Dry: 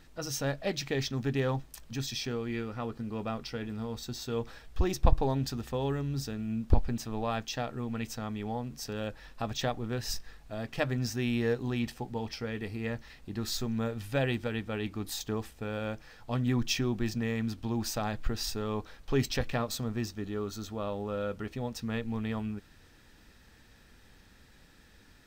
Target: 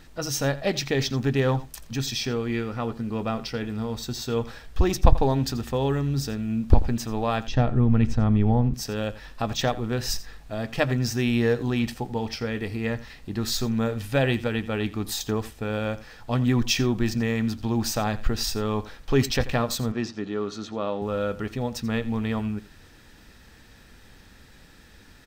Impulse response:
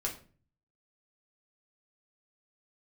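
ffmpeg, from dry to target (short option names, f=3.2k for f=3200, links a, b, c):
-filter_complex "[0:a]asettb=1/sr,asplit=3[a][b][c];[a]atrim=end=7.474[d];[b]atrim=start=7.47:end=8.74,asetpts=PTS-STARTPTS,afade=t=in:d=0.004:c=qsin,afade=t=out:st=1.266:d=0.004:c=qsin,aemphasis=mode=reproduction:type=riaa[e];[c]atrim=start=8.736[f];[d][e]acrossfade=d=0.004:c1=hsin:c2=qsin[g];[g][f]acrossfade=d=0.004:c1=qsin:c2=hsin,asettb=1/sr,asplit=3[h][i][j];[h]atrim=end=19.924[k];[i]atrim=start=19.92:end=21.02,asetpts=PTS-STARTPTS,afade=t=in:d=0.004:c=qsin,afade=t=out:st=1.096:d=0.004:c=qsin,highpass=170,lowpass=5k[l];[j]atrim=start=21.016[m];[k][l]acrossfade=d=0.004:c1=hsin:c2=qsin[n];[n][m]acrossfade=d=0.004:c1=qsin:c2=hsin,asplit=2[o][p];[p]aecho=0:1:85:0.141[q];[o][q]amix=inputs=2:normalize=0,volume=7dB"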